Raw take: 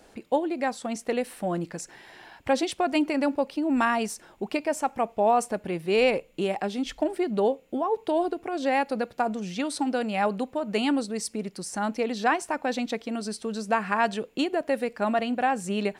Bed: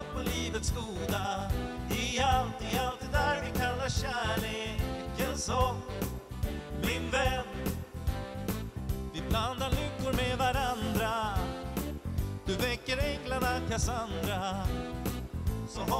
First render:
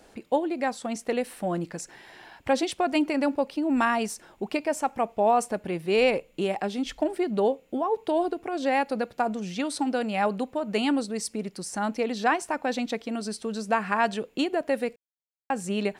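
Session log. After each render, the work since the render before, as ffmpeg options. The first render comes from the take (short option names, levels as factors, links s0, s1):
-filter_complex "[0:a]asplit=3[s0][s1][s2];[s0]atrim=end=14.96,asetpts=PTS-STARTPTS,afade=t=out:st=14.956:d=0.004:c=hsin[s3];[s1]atrim=start=14.96:end=15.5,asetpts=PTS-STARTPTS,volume=0[s4];[s2]atrim=start=15.5,asetpts=PTS-STARTPTS,afade=t=in:d=0.004:c=hsin[s5];[s3][s4][s5]concat=n=3:v=0:a=1"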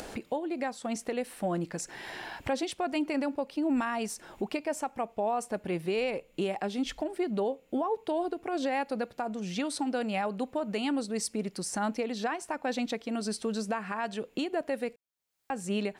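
-af "acompressor=mode=upward:threshold=0.0251:ratio=2.5,alimiter=limit=0.0841:level=0:latency=1:release=365"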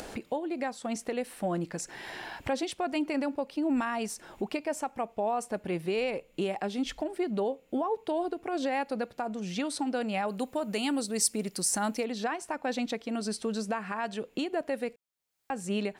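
-filter_complex "[0:a]asettb=1/sr,asplit=3[s0][s1][s2];[s0]atrim=end=10.284[s3];[s1]atrim=start=10.28:end=12.05,asetpts=PTS-STARTPTS,afade=t=in:d=0.004:c=qsin,afade=t=out:st=1.766:d=0.004:c=qsin,aemphasis=mode=production:type=50kf[s4];[s2]atrim=start=12.046[s5];[s3][s4]acrossfade=d=0.004:c1=hsin:c2=qsin[s6];[s6][s5]acrossfade=d=0.004:c1=qsin:c2=hsin"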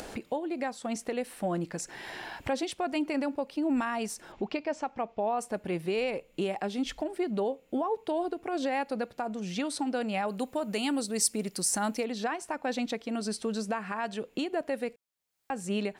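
-filter_complex "[0:a]asettb=1/sr,asplit=3[s0][s1][s2];[s0]atrim=end=4.324[s3];[s1]atrim=start=4.32:end=5.39,asetpts=PTS-STARTPTS,afade=t=in:d=0.004:c=qsin,afade=t=out:st=1.066:d=0.004:c=qsin,lowpass=f=5700:w=0.5412,lowpass=f=5700:w=1.3066[s4];[s2]atrim=start=5.386[s5];[s3][s4]acrossfade=d=0.004:c1=hsin:c2=qsin[s6];[s6][s5]acrossfade=d=0.004:c1=qsin:c2=hsin"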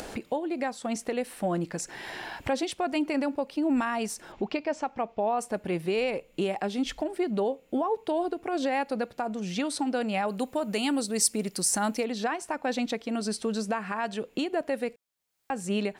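-af "volume=1.33"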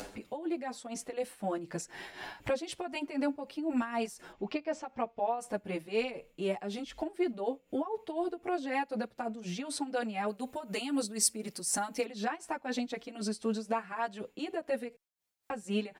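-filter_complex "[0:a]tremolo=f=4:d=0.67,asplit=2[s0][s1];[s1]adelay=7.9,afreqshift=0.92[s2];[s0][s2]amix=inputs=2:normalize=1"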